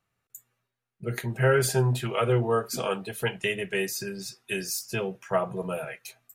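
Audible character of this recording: noise floor -84 dBFS; spectral tilt -4.5 dB/octave

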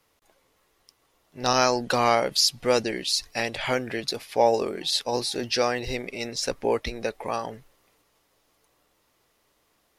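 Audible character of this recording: noise floor -69 dBFS; spectral tilt -2.5 dB/octave

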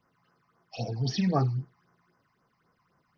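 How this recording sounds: phasing stages 8, 3.8 Hz, lowest notch 420–3900 Hz

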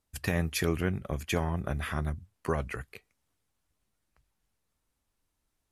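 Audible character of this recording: noise floor -81 dBFS; spectral tilt -5.5 dB/octave

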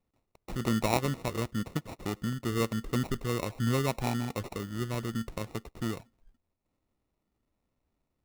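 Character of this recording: aliases and images of a low sample rate 1.6 kHz, jitter 0%

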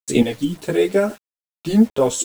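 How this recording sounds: chopped level 0.91 Hz, depth 65%, duty 20%; a quantiser's noise floor 8-bit, dither none; a shimmering, thickened sound

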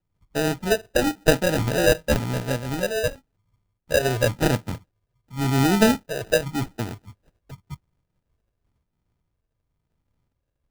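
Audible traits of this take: a buzz of ramps at a fixed pitch in blocks of 8 samples; phasing stages 8, 0.92 Hz, lowest notch 220–1400 Hz; aliases and images of a low sample rate 1.1 kHz, jitter 0%; random flutter of the level

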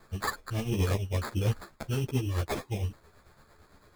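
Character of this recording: tremolo triangle 8.9 Hz, depth 60%; aliases and images of a low sample rate 2.9 kHz, jitter 0%; a shimmering, thickened sound

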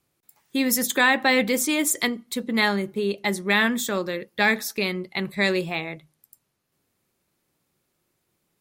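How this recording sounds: noise floor -75 dBFS; spectral tilt -3.5 dB/octave

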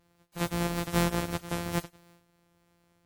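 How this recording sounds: a buzz of ramps at a fixed pitch in blocks of 256 samples; WMA

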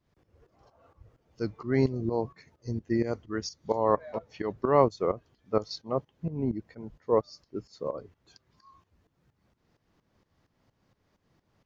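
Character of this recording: tremolo saw up 4.3 Hz, depth 80%

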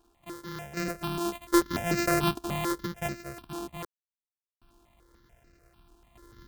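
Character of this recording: a buzz of ramps at a fixed pitch in blocks of 128 samples; random-step tremolo 1.3 Hz, depth 100%; a quantiser's noise floor 12-bit, dither none; notches that jump at a steady rate 6.8 Hz 540–3300 Hz

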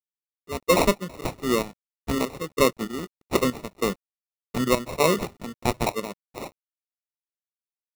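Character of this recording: aliases and images of a low sample rate 1.6 kHz, jitter 0%; chopped level 1.6 Hz, depth 65%, duty 60%; a quantiser's noise floor 10-bit, dither none

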